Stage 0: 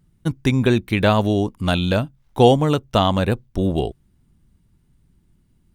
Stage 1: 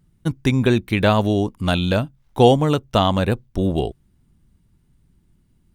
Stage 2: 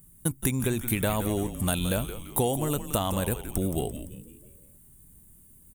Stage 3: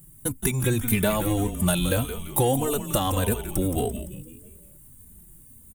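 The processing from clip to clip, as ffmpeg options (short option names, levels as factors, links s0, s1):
-af anull
-filter_complex "[0:a]acompressor=threshold=0.0501:ratio=4,aexciter=amount=14.2:drive=6:freq=7600,asplit=2[s0][s1];[s1]asplit=5[s2][s3][s4][s5][s6];[s2]adelay=171,afreqshift=-130,volume=0.316[s7];[s3]adelay=342,afreqshift=-260,volume=0.148[s8];[s4]adelay=513,afreqshift=-390,volume=0.07[s9];[s5]adelay=684,afreqshift=-520,volume=0.0327[s10];[s6]adelay=855,afreqshift=-650,volume=0.0155[s11];[s7][s8][s9][s10][s11]amix=inputs=5:normalize=0[s12];[s0][s12]amix=inputs=2:normalize=0"
-filter_complex "[0:a]asplit=2[s0][s1];[s1]asoftclip=type=tanh:threshold=0.0794,volume=0.631[s2];[s0][s2]amix=inputs=2:normalize=0,asplit=2[s3][s4];[s4]adelay=3.1,afreqshift=-1.7[s5];[s3][s5]amix=inputs=2:normalize=1,volume=1.5"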